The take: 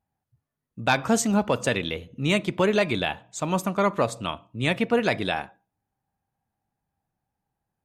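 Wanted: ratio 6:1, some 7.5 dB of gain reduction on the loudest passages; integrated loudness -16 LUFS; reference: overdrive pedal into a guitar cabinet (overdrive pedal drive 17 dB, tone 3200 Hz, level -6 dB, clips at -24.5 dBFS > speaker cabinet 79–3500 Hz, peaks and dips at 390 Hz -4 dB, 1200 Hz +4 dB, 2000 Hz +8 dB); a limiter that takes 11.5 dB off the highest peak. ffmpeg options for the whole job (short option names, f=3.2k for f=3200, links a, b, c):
-filter_complex "[0:a]acompressor=threshold=-25dB:ratio=6,alimiter=level_in=0.5dB:limit=-24dB:level=0:latency=1,volume=-0.5dB,asplit=2[a][b];[b]highpass=f=720:p=1,volume=17dB,asoftclip=type=tanh:threshold=-24.5dB[c];[a][c]amix=inputs=2:normalize=0,lowpass=f=3.2k:p=1,volume=-6dB,highpass=79,equalizer=f=390:t=q:w=4:g=-4,equalizer=f=1.2k:t=q:w=4:g=4,equalizer=f=2k:t=q:w=4:g=8,lowpass=f=3.5k:w=0.5412,lowpass=f=3.5k:w=1.3066,volume=17dB"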